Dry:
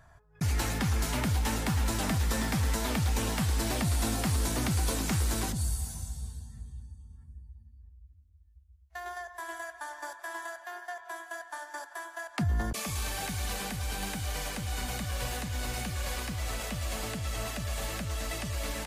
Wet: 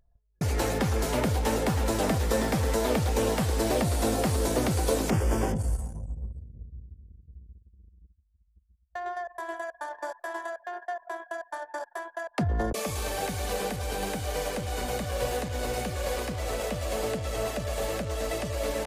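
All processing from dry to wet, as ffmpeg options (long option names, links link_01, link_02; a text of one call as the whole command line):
ffmpeg -i in.wav -filter_complex "[0:a]asettb=1/sr,asplit=3[link_01][link_02][link_03];[link_01]atrim=end=5.104[link_04];[link_02]atrim=start=5.1:end=6.33,asetpts=PTS-STARTPTS,afade=type=in:duration=0.004:curve=qsin,afade=type=out:start_time=1.226:duration=0.004:curve=qsin,asuperstop=centerf=4000:order=4:qfactor=3.1,highshelf=frequency=3500:gain=-8.5,asplit=2[link_05][link_06];[link_06]adelay=19,volume=-3dB[link_07];[link_05][link_07]amix=inputs=2:normalize=0,atrim=end_sample=54243[link_08];[link_03]atrim=start=6.326[link_09];[link_04][link_08]acrossfade=duration=0.004:curve1=hsin:curve2=qsin[link_10];[link_10][link_09]acrossfade=duration=0.004:curve1=qsin:curve2=hsin,anlmdn=0.158,equalizer=frequency=490:width=1.2:gain=14" out.wav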